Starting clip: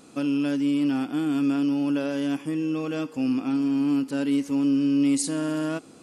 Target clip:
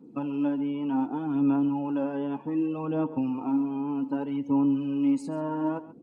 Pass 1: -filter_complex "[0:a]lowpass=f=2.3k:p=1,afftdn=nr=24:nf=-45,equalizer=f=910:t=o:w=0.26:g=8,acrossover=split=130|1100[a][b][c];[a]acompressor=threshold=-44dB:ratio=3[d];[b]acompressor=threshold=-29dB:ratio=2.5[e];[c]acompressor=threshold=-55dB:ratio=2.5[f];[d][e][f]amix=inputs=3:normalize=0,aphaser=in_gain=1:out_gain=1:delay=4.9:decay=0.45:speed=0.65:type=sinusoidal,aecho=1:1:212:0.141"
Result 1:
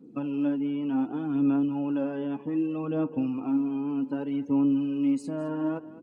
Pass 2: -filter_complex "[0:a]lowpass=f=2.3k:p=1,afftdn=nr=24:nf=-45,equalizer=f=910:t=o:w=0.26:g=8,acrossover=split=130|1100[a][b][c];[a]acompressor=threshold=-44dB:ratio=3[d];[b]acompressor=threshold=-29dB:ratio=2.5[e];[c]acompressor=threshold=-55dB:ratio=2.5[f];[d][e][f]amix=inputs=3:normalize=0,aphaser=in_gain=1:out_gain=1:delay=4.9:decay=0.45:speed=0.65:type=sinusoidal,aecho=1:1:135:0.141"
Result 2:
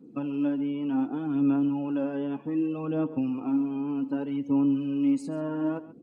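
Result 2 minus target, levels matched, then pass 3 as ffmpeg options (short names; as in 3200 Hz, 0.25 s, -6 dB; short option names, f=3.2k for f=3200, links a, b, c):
1000 Hz band -5.0 dB
-filter_complex "[0:a]lowpass=f=2.3k:p=1,afftdn=nr=24:nf=-45,equalizer=f=910:t=o:w=0.26:g=19.5,acrossover=split=130|1100[a][b][c];[a]acompressor=threshold=-44dB:ratio=3[d];[b]acompressor=threshold=-29dB:ratio=2.5[e];[c]acompressor=threshold=-55dB:ratio=2.5[f];[d][e][f]amix=inputs=3:normalize=0,aphaser=in_gain=1:out_gain=1:delay=4.9:decay=0.45:speed=0.65:type=sinusoidal,aecho=1:1:135:0.141"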